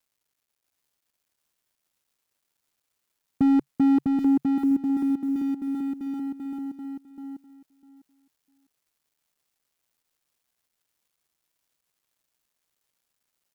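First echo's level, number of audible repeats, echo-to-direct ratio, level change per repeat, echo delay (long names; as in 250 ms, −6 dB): −4.0 dB, 3, −4.0 dB, −15.5 dB, 651 ms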